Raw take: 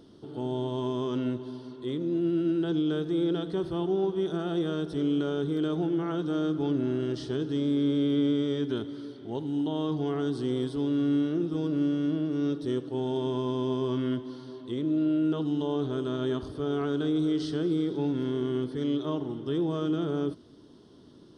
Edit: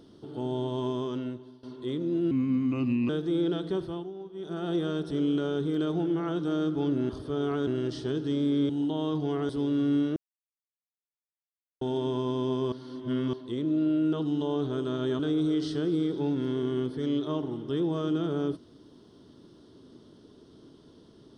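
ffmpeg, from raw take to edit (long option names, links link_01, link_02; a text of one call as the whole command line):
ffmpeg -i in.wav -filter_complex "[0:a]asplit=15[link_01][link_02][link_03][link_04][link_05][link_06][link_07][link_08][link_09][link_10][link_11][link_12][link_13][link_14][link_15];[link_01]atrim=end=1.63,asetpts=PTS-STARTPTS,afade=type=out:start_time=0.9:duration=0.73:silence=0.133352[link_16];[link_02]atrim=start=1.63:end=2.314,asetpts=PTS-STARTPTS,afade=type=in:duration=0.004:curve=hsin:silence=0.133352[link_17];[link_03]atrim=start=2.31:end=2.92,asetpts=PTS-STARTPTS,asetrate=34398,aresample=44100,atrim=end_sample=34488,asetpts=PTS-STARTPTS[link_18];[link_04]atrim=start=2.916:end=3.94,asetpts=PTS-STARTPTS,afade=type=out:start_time=0.664:duration=0.36:silence=0.199526[link_19];[link_05]atrim=start=3.94:end=4.17,asetpts=PTS-STARTPTS,volume=-14dB[link_20];[link_06]atrim=start=4.17:end=6.922,asetpts=PTS-STARTPTS,afade=type=in:duration=0.36:silence=0.199526[link_21];[link_07]atrim=start=16.388:end=16.972[link_22];[link_08]atrim=start=6.918:end=7.942[link_23];[link_09]atrim=start=9.458:end=10.262[link_24];[link_10]atrim=start=10.688:end=11.36,asetpts=PTS-STARTPTS,afade=type=out:start_time=0.668:duration=0.004:curve=hsin[link_25];[link_11]atrim=start=11.36:end=13.01,asetpts=PTS-STARTPTS,volume=0[link_26];[link_12]atrim=start=13.01:end=13.922,asetpts=PTS-STARTPTS,afade=type=in:duration=0.004:curve=hsin[link_27];[link_13]atrim=start=13.918:end=14.532,asetpts=PTS-STARTPTS,areverse[link_28];[link_14]atrim=start=14.528:end=16.392[link_29];[link_15]atrim=start=16.968[link_30];[link_16][link_17]concat=n=2:v=0:a=1[link_31];[link_31][link_18]acrossfade=duration=0.004:curve1=hsin:curve2=hsin[link_32];[link_19][link_20][link_21]concat=n=3:v=0:a=1[link_33];[link_32][link_33]acrossfade=duration=0.004:curve1=hsin:curve2=hsin[link_34];[link_34][link_22]acrossfade=duration=0.004:curve1=hsin:curve2=hsin[link_35];[link_35][link_23]acrossfade=duration=0.004:curve1=hsin:curve2=hsin[link_36];[link_36][link_24]acrossfade=duration=0.004:curve1=hsin:curve2=hsin[link_37];[link_25][link_26][link_27]concat=n=3:v=0:a=1[link_38];[link_37][link_38]acrossfade=duration=0.004:curve1=hsin:curve2=hsin[link_39];[link_39][link_28]acrossfade=duration=0.004:curve1=hsin:curve2=hsin[link_40];[link_40][link_29]acrossfade=duration=0.004:curve1=hsin:curve2=hsin[link_41];[link_41][link_30]acrossfade=duration=0.004:curve1=hsin:curve2=hsin" out.wav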